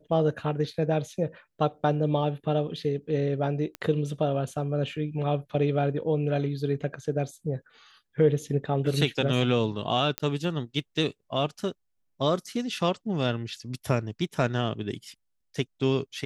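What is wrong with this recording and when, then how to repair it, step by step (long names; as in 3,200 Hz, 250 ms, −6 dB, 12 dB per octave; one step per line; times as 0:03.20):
0:03.75: click −20 dBFS
0:10.18: click −11 dBFS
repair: click removal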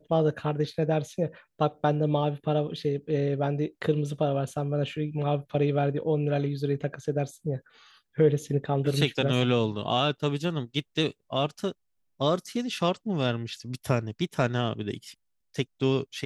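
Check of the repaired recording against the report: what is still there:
none of them is left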